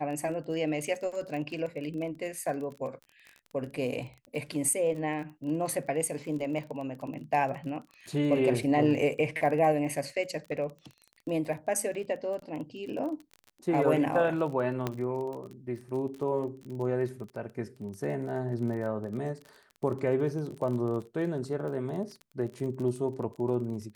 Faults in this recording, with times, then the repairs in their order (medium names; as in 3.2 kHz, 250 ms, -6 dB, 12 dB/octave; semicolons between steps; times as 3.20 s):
crackle 28 per s -37 dBFS
14.87 s: pop -16 dBFS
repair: de-click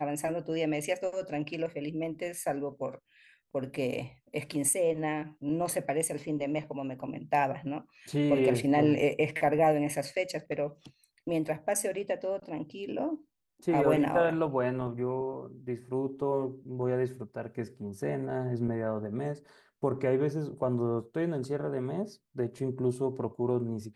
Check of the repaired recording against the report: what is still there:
14.87 s: pop